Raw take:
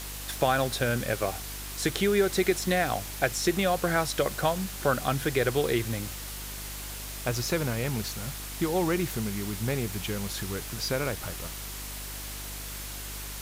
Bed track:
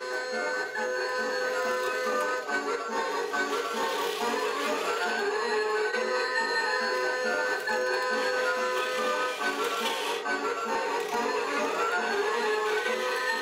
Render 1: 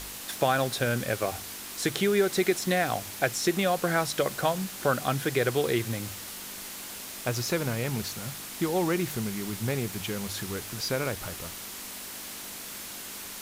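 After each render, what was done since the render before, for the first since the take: de-hum 50 Hz, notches 3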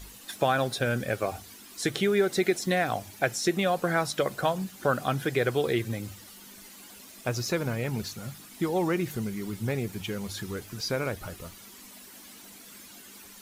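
noise reduction 12 dB, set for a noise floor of -40 dBFS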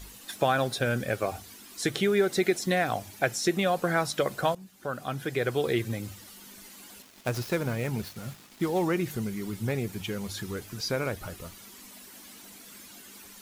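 4.55–5.75 s: fade in linear, from -17 dB; 7.02–8.85 s: dead-time distortion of 0.061 ms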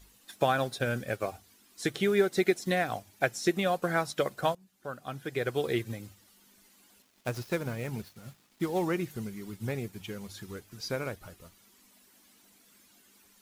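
upward expansion 1.5:1, over -46 dBFS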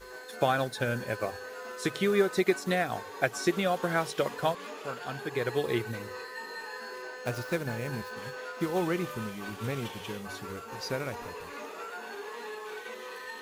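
add bed track -13 dB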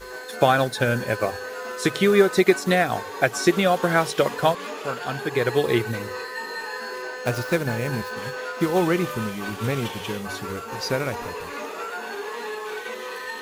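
trim +8.5 dB; peak limiter -2 dBFS, peak gain reduction 1.5 dB

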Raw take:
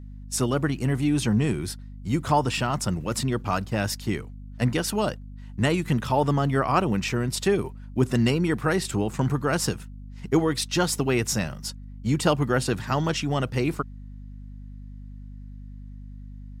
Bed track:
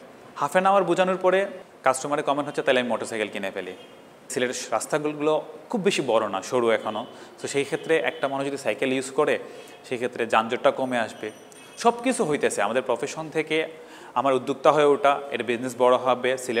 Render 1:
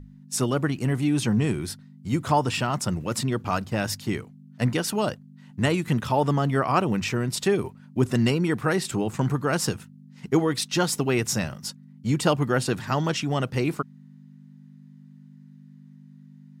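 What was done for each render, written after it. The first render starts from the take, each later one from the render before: hum notches 50/100 Hz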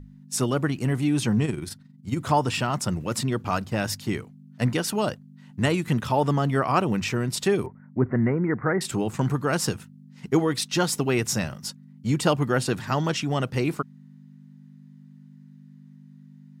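1.45–2.18 s: AM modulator 22 Hz, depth 45%; 7.66–8.81 s: Chebyshev low-pass 2.1 kHz, order 6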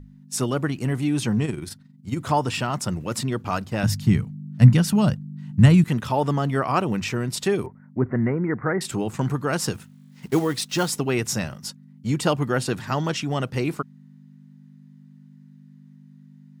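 3.83–5.84 s: resonant low shelf 250 Hz +11.5 dB, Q 1.5; 9.74–10.90 s: block-companded coder 5-bit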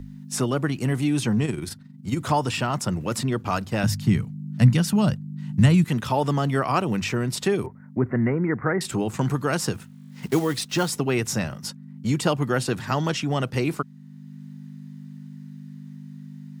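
three bands compressed up and down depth 40%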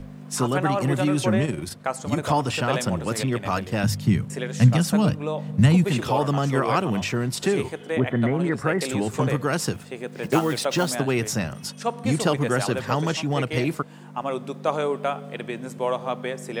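add bed track -6.5 dB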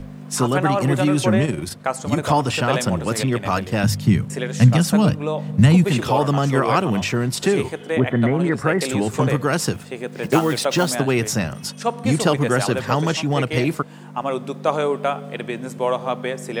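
trim +4 dB; peak limiter -3 dBFS, peak gain reduction 1.5 dB

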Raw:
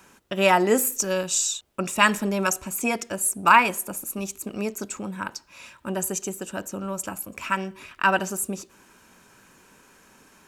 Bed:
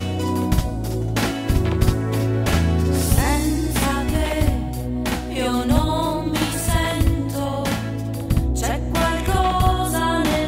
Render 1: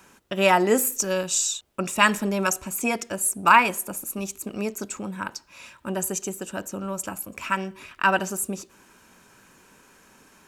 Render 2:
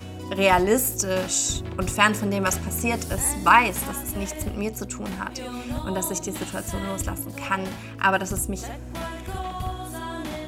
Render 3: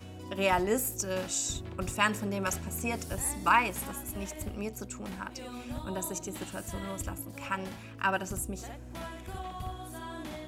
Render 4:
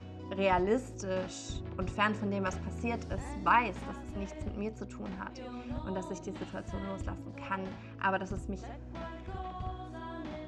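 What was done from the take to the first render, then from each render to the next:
no audible change
add bed -13 dB
trim -8.5 dB
low-pass 6.1 kHz 24 dB/octave; treble shelf 2.4 kHz -9.5 dB

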